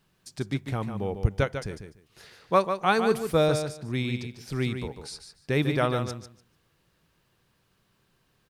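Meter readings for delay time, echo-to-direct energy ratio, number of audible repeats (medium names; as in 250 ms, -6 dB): 147 ms, -8.0 dB, 2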